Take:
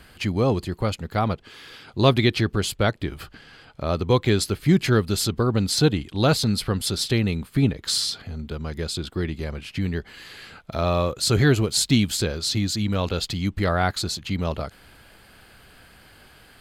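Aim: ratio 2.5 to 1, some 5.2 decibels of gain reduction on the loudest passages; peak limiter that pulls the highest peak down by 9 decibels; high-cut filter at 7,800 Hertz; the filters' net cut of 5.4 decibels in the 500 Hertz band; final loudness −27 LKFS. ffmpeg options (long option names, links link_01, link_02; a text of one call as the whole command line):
ffmpeg -i in.wav -af "lowpass=7800,equalizer=frequency=500:width_type=o:gain=-7,acompressor=threshold=-22dB:ratio=2.5,volume=3.5dB,alimiter=limit=-16.5dB:level=0:latency=1" out.wav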